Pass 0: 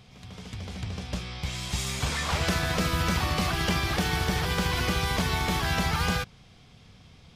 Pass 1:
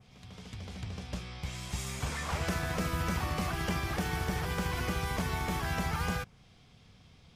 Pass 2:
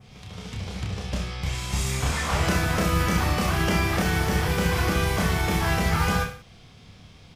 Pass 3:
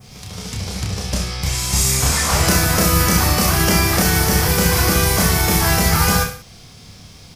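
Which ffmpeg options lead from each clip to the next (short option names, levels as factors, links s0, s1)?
-af "adynamicequalizer=threshold=0.00398:dfrequency=3900:dqfactor=1.2:tfrequency=3900:tqfactor=1.2:attack=5:release=100:ratio=0.375:range=3.5:mode=cutabove:tftype=bell,volume=0.531"
-af "aecho=1:1:30|63|99.3|139.2|183.2:0.631|0.398|0.251|0.158|0.1,volume=2.37"
-af "aexciter=amount=2.6:drive=6.8:freq=4500,volume=2.11"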